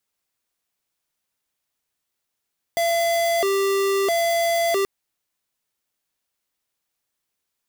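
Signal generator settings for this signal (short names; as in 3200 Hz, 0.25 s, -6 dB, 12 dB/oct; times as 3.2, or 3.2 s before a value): siren hi-lo 393–677 Hz 0.76/s square -20.5 dBFS 2.08 s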